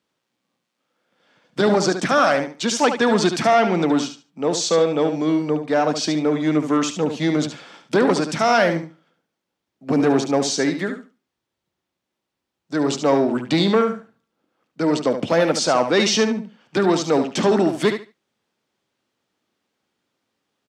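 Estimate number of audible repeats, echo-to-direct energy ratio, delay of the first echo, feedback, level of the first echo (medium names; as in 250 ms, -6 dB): 2, -8.5 dB, 72 ms, 19%, -8.5 dB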